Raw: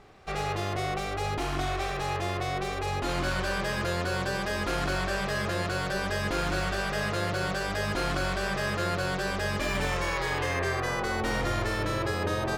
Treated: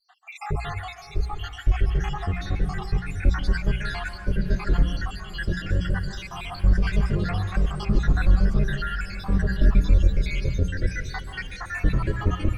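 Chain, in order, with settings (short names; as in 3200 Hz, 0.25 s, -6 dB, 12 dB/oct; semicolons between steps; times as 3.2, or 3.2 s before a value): random spectral dropouts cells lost 79%; tilt -4 dB/oct; notches 60/120/180 Hz; in parallel at -1.5 dB: negative-ratio compressor -34 dBFS; on the sum: diffused feedback echo 0.683 s, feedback 43%, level -15 dB; on a send at -8.5 dB: reverb RT60 0.65 s, pre-delay 0.122 s; on the sum: flange 1.2 Hz, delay 3.5 ms, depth 1.8 ms, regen -35%; bell 750 Hz -12.5 dB 1.6 oct; gain +6 dB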